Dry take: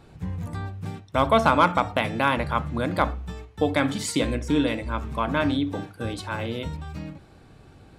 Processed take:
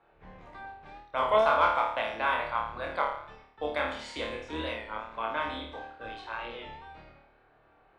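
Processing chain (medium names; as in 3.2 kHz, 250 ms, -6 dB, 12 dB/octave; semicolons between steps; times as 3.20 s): octave divider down 2 oct, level +2 dB; level-controlled noise filter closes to 2 kHz, open at -16 dBFS; three-band isolator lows -22 dB, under 470 Hz, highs -12 dB, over 3.9 kHz; on a send: flutter echo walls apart 4.6 m, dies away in 0.59 s; on the sum: warped record 33 1/3 rpm, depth 100 cents; trim -7 dB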